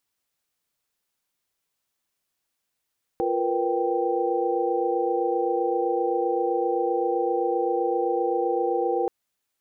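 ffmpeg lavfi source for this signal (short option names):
-f lavfi -i "aevalsrc='0.0447*(sin(2*PI*349.23*t)+sin(2*PI*466.16*t)+sin(2*PI*493.88*t)+sin(2*PI*783.99*t))':d=5.88:s=44100"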